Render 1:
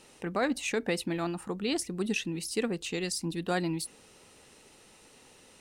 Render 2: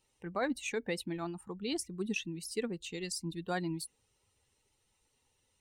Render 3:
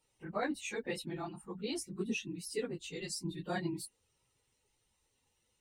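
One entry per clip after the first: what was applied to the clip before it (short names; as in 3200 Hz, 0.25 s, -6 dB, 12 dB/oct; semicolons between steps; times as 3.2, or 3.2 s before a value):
per-bin expansion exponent 1.5; gain -3 dB
phase scrambler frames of 50 ms; gain -2 dB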